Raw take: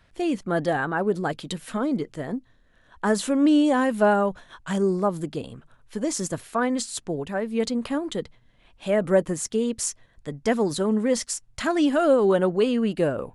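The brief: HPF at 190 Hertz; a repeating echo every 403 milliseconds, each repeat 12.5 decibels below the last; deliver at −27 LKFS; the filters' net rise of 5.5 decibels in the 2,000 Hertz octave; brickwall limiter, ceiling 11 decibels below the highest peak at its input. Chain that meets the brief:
high-pass filter 190 Hz
parametric band 2,000 Hz +7.5 dB
brickwall limiter −17 dBFS
repeating echo 403 ms, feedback 24%, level −12.5 dB

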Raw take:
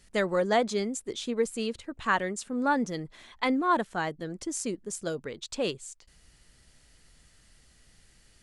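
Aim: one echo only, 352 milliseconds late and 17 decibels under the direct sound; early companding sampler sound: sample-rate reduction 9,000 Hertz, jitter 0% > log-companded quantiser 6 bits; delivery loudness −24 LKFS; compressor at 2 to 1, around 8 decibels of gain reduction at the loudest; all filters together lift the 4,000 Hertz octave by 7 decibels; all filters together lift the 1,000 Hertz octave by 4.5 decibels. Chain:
parametric band 1,000 Hz +5 dB
parametric band 4,000 Hz +8.5 dB
downward compressor 2 to 1, threshold −31 dBFS
single-tap delay 352 ms −17 dB
sample-rate reduction 9,000 Hz, jitter 0%
log-companded quantiser 6 bits
level +8.5 dB

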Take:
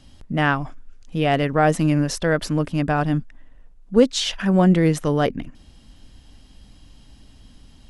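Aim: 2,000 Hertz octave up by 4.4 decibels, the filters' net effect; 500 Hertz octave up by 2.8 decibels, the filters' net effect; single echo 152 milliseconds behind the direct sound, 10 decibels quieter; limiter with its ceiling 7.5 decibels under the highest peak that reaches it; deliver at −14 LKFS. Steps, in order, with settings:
parametric band 500 Hz +3 dB
parametric band 2,000 Hz +5.5 dB
brickwall limiter −9 dBFS
single-tap delay 152 ms −10 dB
level +6.5 dB

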